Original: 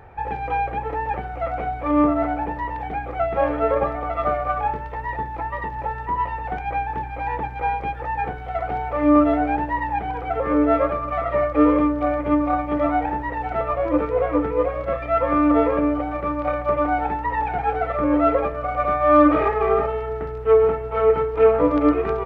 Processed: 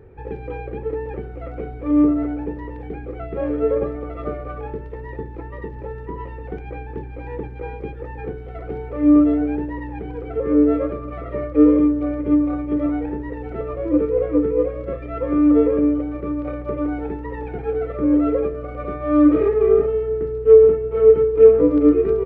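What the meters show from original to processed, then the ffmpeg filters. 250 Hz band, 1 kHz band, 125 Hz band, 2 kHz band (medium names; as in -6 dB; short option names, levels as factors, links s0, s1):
+4.0 dB, -13.0 dB, +1.0 dB, -10.0 dB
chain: -af "lowshelf=f=560:t=q:w=3:g=9.5,volume=0.355"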